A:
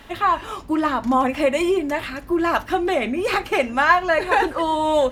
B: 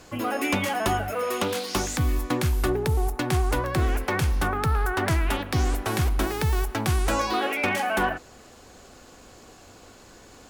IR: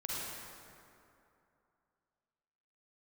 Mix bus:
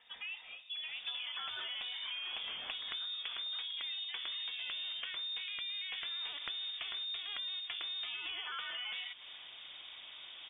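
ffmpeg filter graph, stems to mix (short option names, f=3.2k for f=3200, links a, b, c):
-filter_complex "[0:a]alimiter=limit=-14dB:level=0:latency=1:release=28,volume=-19.5dB,asplit=2[a][b];[b]volume=-19.5dB[c];[1:a]acompressor=threshold=-29dB:ratio=6,adelay=950,volume=-1dB[d];[2:a]atrim=start_sample=2205[e];[c][e]afir=irnorm=-1:irlink=0[f];[a][d][f]amix=inputs=3:normalize=0,lowpass=f=3.1k:t=q:w=0.5098,lowpass=f=3.1k:t=q:w=0.6013,lowpass=f=3.1k:t=q:w=0.9,lowpass=f=3.1k:t=q:w=2.563,afreqshift=-3700,acompressor=threshold=-39dB:ratio=6"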